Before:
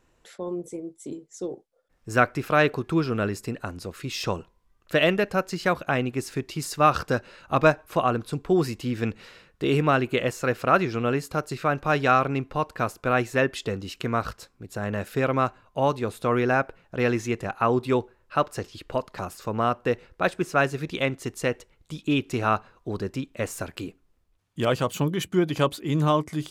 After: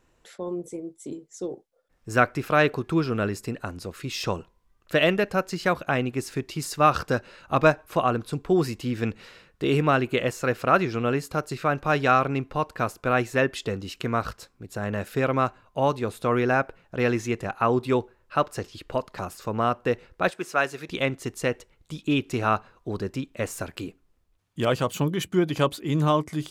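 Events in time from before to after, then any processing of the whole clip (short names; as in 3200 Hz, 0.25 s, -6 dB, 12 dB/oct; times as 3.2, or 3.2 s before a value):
20.3–20.89 HPF 570 Hz 6 dB/oct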